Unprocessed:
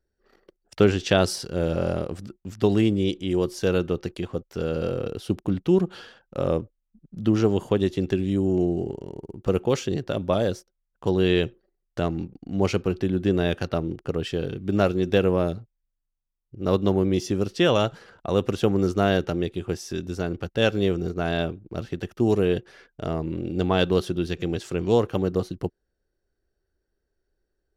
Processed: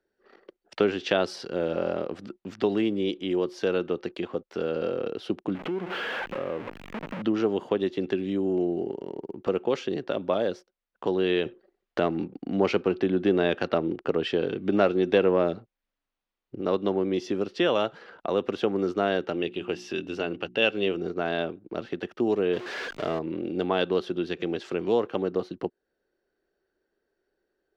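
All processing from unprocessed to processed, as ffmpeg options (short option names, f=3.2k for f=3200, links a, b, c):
-filter_complex "[0:a]asettb=1/sr,asplit=3[a][b][c];[a]atrim=end=5.554[d];[b]atrim=start=5.55:end=7.22,asetpts=PTS-STARTPTS,afade=t=in:d=0.004:c=qsin,afade=t=out:st=1.666:d=0.004:c=qsin,aeval=exprs='val(0)+0.5*0.0531*sgn(val(0))':c=same,highshelf=f=3.3k:t=q:w=1.5:g=-6.5,acompressor=threshold=-32dB:ratio=2.5:attack=3.2:release=140:knee=1:detection=peak[e];[c]atrim=start=7.216[f];[d][e]acrossfade=d=0.004:c1=hsin:c2=qsin[g];[g][f]acrossfade=d=0.004:c1=qsin:c2=hsin,asettb=1/sr,asplit=3[h][i][j];[h]atrim=end=11.454[k];[i]atrim=start=11.45:end=16.61,asetpts=PTS-STARTPTS,afade=t=in:d=0.004:c=qsin,afade=t=out:st=5.156:d=0.004:c=qsin,highshelf=f=6.2k:g=-3,acontrast=38[l];[j]atrim=start=16.606[m];[k][l]acrossfade=d=0.004:c1=hsin:c2=qsin[n];[n][m]acrossfade=d=0.004:c1=qsin:c2=hsin,asettb=1/sr,asplit=3[o][p][q];[o]atrim=end=19.324[r];[p]atrim=start=19.32:end=20.97,asetpts=PTS-STARTPTS,afade=t=in:d=0.004:c=qsin,afade=t=out:st=1.646:d=0.004:c=qsin,equalizer=f=2.8k:t=o:w=0.3:g=12,bandreject=f=60:t=h:w=6,bandreject=f=120:t=h:w=6,bandreject=f=180:t=h:w=6,bandreject=f=240:t=h:w=6,bandreject=f=300:t=h:w=6,bandreject=f=360:t=h:w=6[s];[q]atrim=start=20.966[t];[r][s]acrossfade=d=0.004:c1=hsin:c2=qsin[u];[u][t]acrossfade=d=0.004:c1=qsin:c2=hsin,asettb=1/sr,asplit=3[v][w][x];[v]atrim=end=22.534[y];[w]atrim=start=22.53:end=23.19,asetpts=PTS-STARTPTS,afade=t=in:d=0.004:c=qsin,afade=t=out:st=0.656:d=0.004:c=qsin,aeval=exprs='val(0)+0.5*0.0266*sgn(val(0))':c=same,acrossover=split=8700[z][aa];[aa]acompressor=threshold=-58dB:ratio=4:attack=1:release=60[ab];[z][ab]amix=inputs=2:normalize=0,highshelf=f=6.5k:g=8[ac];[x]atrim=start=23.186[ad];[y][ac]acrossfade=d=0.004:c1=hsin:c2=qsin[ae];[ae][ad]acrossfade=d=0.004:c1=qsin:c2=hsin,acrossover=split=210 4500:gain=0.0891 1 0.0891[af][ag][ah];[af][ag][ah]amix=inputs=3:normalize=0,acompressor=threshold=-40dB:ratio=1.5,volume=5.5dB"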